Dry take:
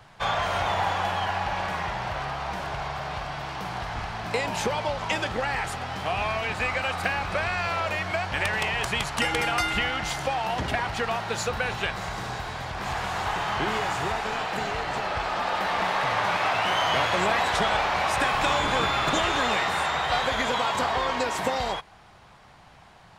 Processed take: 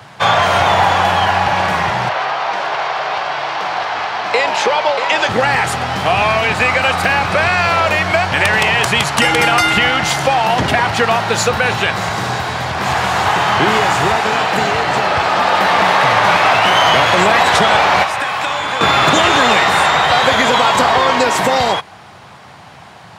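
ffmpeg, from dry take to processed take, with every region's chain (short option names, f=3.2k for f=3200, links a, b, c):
-filter_complex "[0:a]asettb=1/sr,asplit=3[a][b][c];[a]atrim=end=2.094[d];[b]atrim=start=2.09:end=5.29,asetpts=PTS-STARTPTS,afade=t=in:d=0.004:c=qsin,afade=t=out:st=3.196:d=0.004:c=qsin,acrossover=split=350 6300:gain=0.0891 1 0.126[e][f][g];[e][f][g]amix=inputs=3:normalize=0,aecho=1:1:635:0.376,atrim=end_sample=141120[h];[c]atrim=start=5.286[i];[d][h]acrossfade=d=0.004:c1=hsin:c2=qsin[j];[j][i]acrossfade=d=0.004:c1=qsin:c2=hsin,asettb=1/sr,asplit=3[k][l][m];[k]atrim=end=18.034[n];[l]atrim=start=18.03:end=18.81,asetpts=PTS-STARTPTS,afade=t=in:d=0.004:c=qsin,afade=t=out:st=0.776:d=0.004:c=qsin,lowshelf=f=340:g=-9,acrossover=split=140|550|3700[o][p][q][r];[o]acompressor=threshold=-49dB:ratio=3[s];[p]acompressor=threshold=-49dB:ratio=3[t];[q]acompressor=threshold=-33dB:ratio=3[u];[r]acompressor=threshold=-50dB:ratio=3[v];[s][t][u][v]amix=inputs=4:normalize=0[w];[m]atrim=start=18.806[x];[n][w]acrossfade=d=0.004:c1=hsin:c2=qsin[y];[y][x]acrossfade=d=0.004:c1=qsin:c2=hsin,highpass=f=88:w=0.5412,highpass=f=88:w=1.3066,acontrast=37,alimiter=level_in=9.5dB:limit=-1dB:release=50:level=0:latency=1,volume=-1dB"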